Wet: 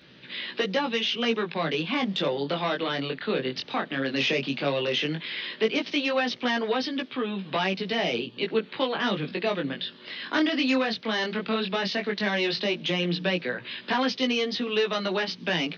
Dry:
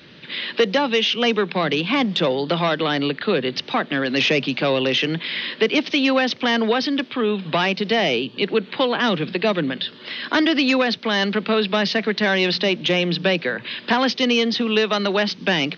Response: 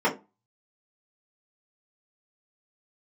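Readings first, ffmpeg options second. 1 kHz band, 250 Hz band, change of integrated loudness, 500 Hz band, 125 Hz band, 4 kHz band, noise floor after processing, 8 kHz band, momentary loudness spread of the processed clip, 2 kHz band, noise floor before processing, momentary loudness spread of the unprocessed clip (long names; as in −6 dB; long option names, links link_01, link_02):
−7.0 dB, −7.0 dB, −7.0 dB, −7.0 dB, −6.5 dB, −7.0 dB, −48 dBFS, can't be measured, 5 LU, −7.0 dB, −43 dBFS, 5 LU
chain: -af "flanger=delay=15.5:depth=7.4:speed=0.14,volume=-4dB"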